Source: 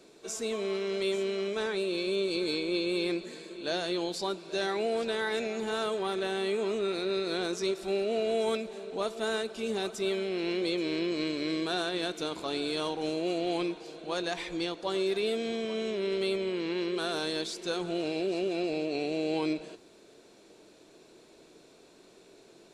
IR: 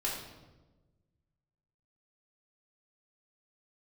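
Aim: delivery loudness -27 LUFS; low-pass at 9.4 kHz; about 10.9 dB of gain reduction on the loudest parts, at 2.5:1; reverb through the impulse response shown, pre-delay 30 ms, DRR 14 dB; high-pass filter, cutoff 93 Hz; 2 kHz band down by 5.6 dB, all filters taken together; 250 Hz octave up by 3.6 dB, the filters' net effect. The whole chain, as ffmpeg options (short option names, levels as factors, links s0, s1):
-filter_complex "[0:a]highpass=93,lowpass=9400,equalizer=f=250:t=o:g=6,equalizer=f=2000:t=o:g=-8,acompressor=threshold=0.00891:ratio=2.5,asplit=2[s0][s1];[1:a]atrim=start_sample=2205,adelay=30[s2];[s1][s2]afir=irnorm=-1:irlink=0,volume=0.112[s3];[s0][s3]amix=inputs=2:normalize=0,volume=4.22"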